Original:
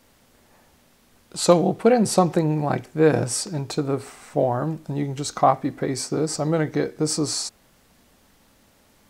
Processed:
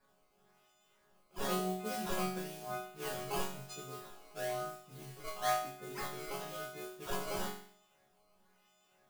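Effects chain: frequency quantiser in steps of 3 st; decimation with a swept rate 14×, swing 160% 1 Hz; modulation noise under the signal 11 dB; resonator bank C#3 sus4, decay 0.56 s; gain -3.5 dB

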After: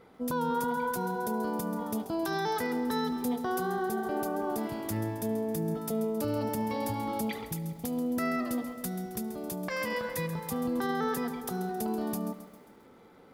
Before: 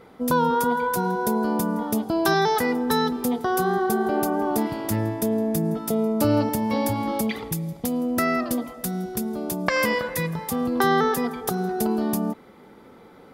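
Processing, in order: limiter -15.5 dBFS, peak gain reduction 9 dB; lo-fi delay 0.134 s, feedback 55%, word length 8-bit, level -12 dB; gain -7.5 dB

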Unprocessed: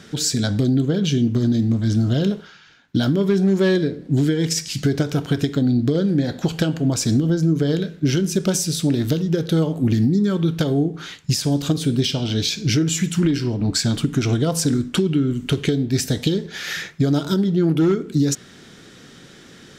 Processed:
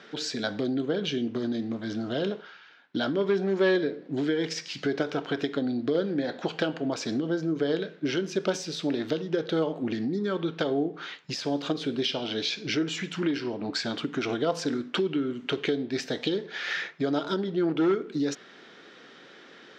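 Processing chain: HPF 430 Hz 12 dB/oct; air absorption 220 m

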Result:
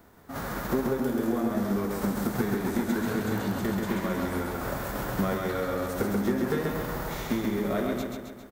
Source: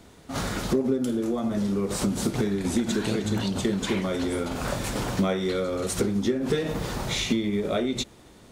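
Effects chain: spectral whitening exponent 0.6; band shelf 5000 Hz -13 dB 2.5 oct; on a send: feedback echo 0.134 s, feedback 56%, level -3.5 dB; on the sum: gain -3.5 dB

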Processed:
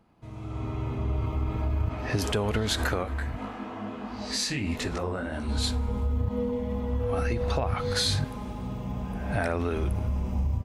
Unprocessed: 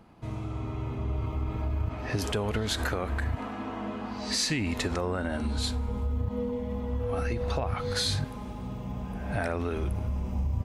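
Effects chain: AGC gain up to 11 dB; 3.02–5.47 detuned doubles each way 40 cents -> 56 cents; gain -8.5 dB

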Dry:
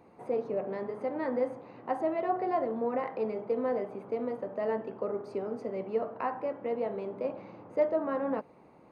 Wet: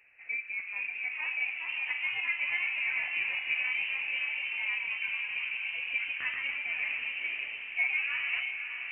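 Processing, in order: inverted band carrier 2800 Hz; echoes that change speed 0.481 s, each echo +1 st, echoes 3; diffused feedback echo 0.584 s, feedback 52%, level -6.5 dB; gain -4.5 dB

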